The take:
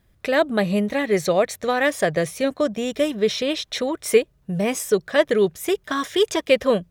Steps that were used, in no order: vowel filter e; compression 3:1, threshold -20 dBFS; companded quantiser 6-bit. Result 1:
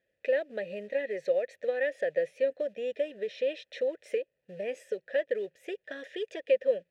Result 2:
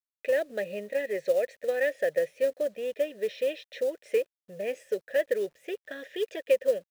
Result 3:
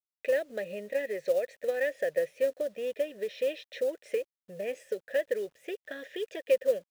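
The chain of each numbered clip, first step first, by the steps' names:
companded quantiser > compression > vowel filter; vowel filter > companded quantiser > compression; compression > vowel filter > companded quantiser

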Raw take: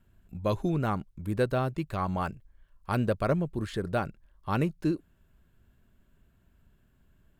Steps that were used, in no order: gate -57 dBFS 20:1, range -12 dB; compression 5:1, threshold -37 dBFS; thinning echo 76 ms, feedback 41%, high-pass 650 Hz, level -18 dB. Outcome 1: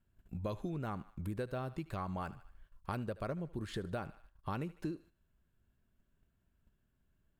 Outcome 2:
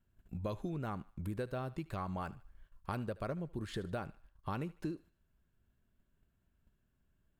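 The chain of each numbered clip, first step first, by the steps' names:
thinning echo > compression > gate; compression > gate > thinning echo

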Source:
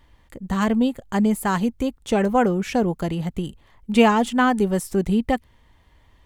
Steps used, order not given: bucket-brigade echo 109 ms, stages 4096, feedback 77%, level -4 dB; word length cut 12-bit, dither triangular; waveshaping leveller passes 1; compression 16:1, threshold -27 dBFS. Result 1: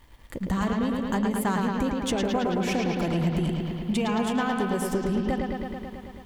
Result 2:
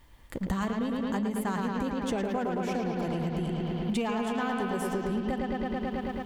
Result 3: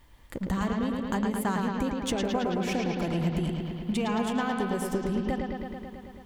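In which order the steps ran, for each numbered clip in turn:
word length cut > compression > bucket-brigade echo > waveshaping leveller; bucket-brigade echo > waveshaping leveller > word length cut > compression; waveshaping leveller > word length cut > compression > bucket-brigade echo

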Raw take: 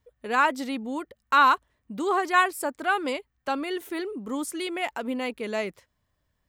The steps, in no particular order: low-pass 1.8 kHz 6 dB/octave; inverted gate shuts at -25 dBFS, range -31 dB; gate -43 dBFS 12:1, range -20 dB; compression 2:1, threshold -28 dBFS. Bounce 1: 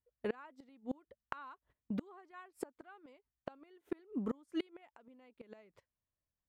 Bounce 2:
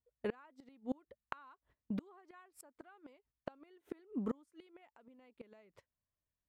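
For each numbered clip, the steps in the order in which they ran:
low-pass > gate > inverted gate > compression; gate > compression > inverted gate > low-pass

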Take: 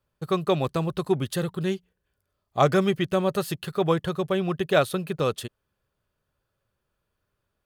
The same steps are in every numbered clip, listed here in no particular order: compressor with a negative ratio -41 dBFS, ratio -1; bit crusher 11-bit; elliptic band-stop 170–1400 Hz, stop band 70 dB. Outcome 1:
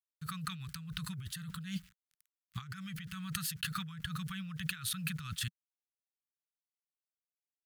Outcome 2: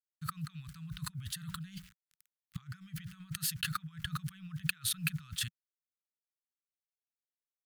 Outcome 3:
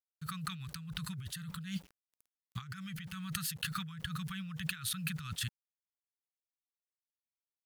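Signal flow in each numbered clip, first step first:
bit crusher > elliptic band-stop > compressor with a negative ratio; bit crusher > compressor with a negative ratio > elliptic band-stop; elliptic band-stop > bit crusher > compressor with a negative ratio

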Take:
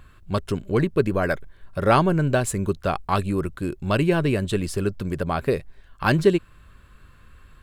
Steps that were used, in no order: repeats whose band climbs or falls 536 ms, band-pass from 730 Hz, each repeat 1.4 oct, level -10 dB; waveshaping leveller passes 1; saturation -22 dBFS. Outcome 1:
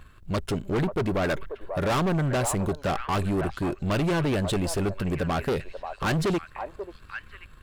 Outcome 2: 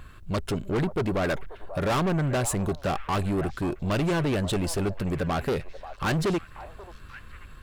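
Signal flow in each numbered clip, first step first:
waveshaping leveller > repeats whose band climbs or falls > saturation; saturation > waveshaping leveller > repeats whose band climbs or falls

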